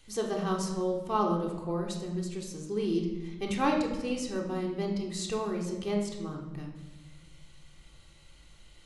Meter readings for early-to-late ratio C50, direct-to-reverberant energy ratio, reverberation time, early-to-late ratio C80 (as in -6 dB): 5.5 dB, -1.0 dB, 1.2 s, 8.0 dB